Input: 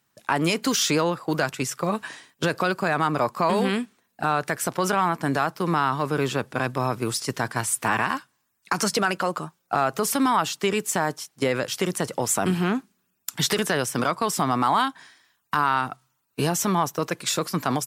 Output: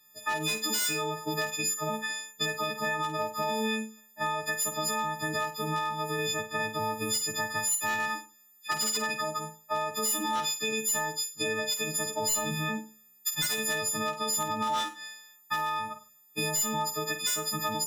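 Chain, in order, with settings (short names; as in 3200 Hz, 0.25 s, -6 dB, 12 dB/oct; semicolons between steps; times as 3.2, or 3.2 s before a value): frequency quantiser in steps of 6 st; thirty-one-band EQ 1600 Hz +4 dB, 4000 Hz +12 dB, 10000 Hz -5 dB; wavefolder -8.5 dBFS; compressor 4:1, threshold -26 dBFS, peak gain reduction 12 dB; flutter echo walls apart 8.6 m, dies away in 0.33 s; gain -3.5 dB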